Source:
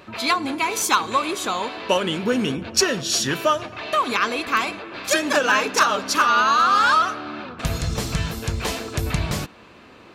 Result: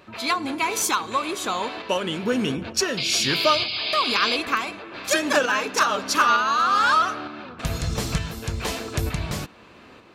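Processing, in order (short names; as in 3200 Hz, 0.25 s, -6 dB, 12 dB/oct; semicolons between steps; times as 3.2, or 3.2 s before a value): painted sound noise, 2.97–4.37, 2100–5100 Hz -24 dBFS; tremolo saw up 1.1 Hz, depth 45%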